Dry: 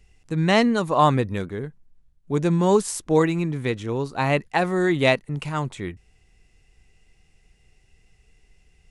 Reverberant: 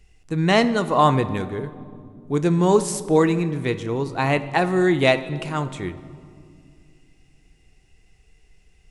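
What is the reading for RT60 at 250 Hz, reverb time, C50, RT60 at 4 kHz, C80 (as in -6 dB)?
3.4 s, 2.2 s, 14.0 dB, 1.4 s, 15.0 dB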